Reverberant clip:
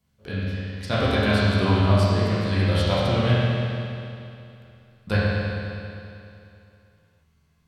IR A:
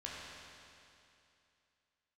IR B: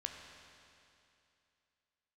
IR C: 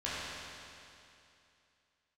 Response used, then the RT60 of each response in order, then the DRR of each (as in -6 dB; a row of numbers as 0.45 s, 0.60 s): C; 2.7 s, 2.7 s, 2.7 s; -5.5 dB, 2.5 dB, -10.5 dB